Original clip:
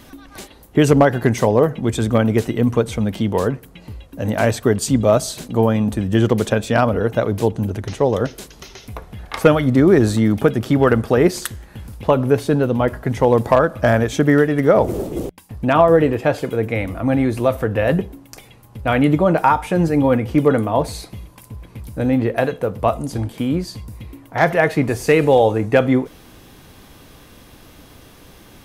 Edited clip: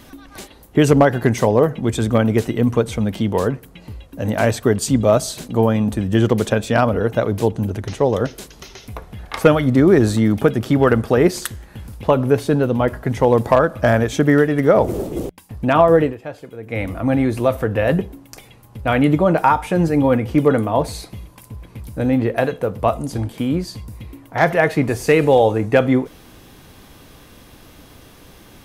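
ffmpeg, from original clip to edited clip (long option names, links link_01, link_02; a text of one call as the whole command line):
ffmpeg -i in.wav -filter_complex "[0:a]asplit=3[link_01][link_02][link_03];[link_01]atrim=end=16.15,asetpts=PTS-STARTPTS,afade=type=out:start_time=15.95:duration=0.2:curve=qsin:silence=0.211349[link_04];[link_02]atrim=start=16.15:end=16.66,asetpts=PTS-STARTPTS,volume=-13.5dB[link_05];[link_03]atrim=start=16.66,asetpts=PTS-STARTPTS,afade=type=in:duration=0.2:curve=qsin:silence=0.211349[link_06];[link_04][link_05][link_06]concat=n=3:v=0:a=1" out.wav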